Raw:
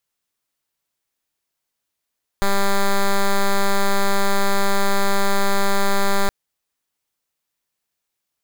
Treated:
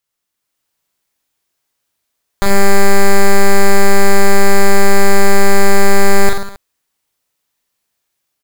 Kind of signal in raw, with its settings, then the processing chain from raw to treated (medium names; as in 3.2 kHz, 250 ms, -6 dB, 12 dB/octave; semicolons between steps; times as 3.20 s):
pulse 198 Hz, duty 7% -16 dBFS 3.87 s
level rider gain up to 5.5 dB; on a send: reverse bouncing-ball echo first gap 40 ms, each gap 1.15×, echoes 5